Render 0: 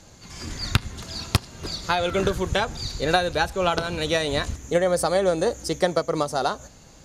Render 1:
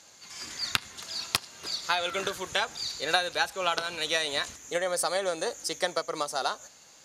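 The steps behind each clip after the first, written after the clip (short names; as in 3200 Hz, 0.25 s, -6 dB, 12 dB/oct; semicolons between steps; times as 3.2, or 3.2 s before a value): HPF 1400 Hz 6 dB/oct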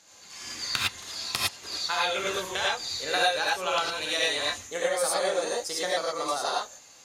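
non-linear reverb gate 0.13 s rising, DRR -5.5 dB; gain -4.5 dB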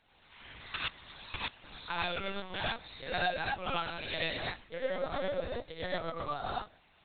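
LPC vocoder at 8 kHz pitch kept; gain -7 dB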